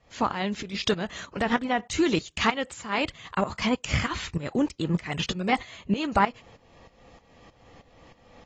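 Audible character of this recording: tremolo saw up 3.2 Hz, depth 85%; AAC

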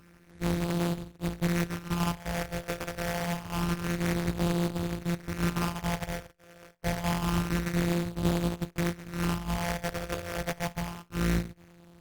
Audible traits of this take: a buzz of ramps at a fixed pitch in blocks of 256 samples; phasing stages 6, 0.27 Hz, lowest notch 250–1500 Hz; aliases and images of a low sample rate 4000 Hz, jitter 20%; Opus

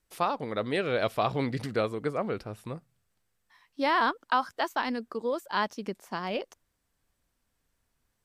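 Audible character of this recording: noise floor -78 dBFS; spectral tilt -3.5 dB/oct

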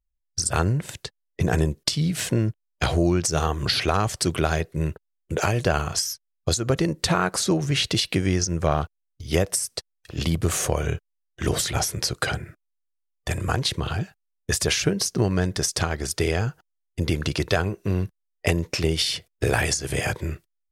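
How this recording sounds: noise floor -77 dBFS; spectral tilt -4.0 dB/oct

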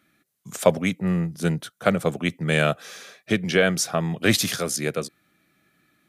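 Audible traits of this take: noise floor -75 dBFS; spectral tilt -4.5 dB/oct

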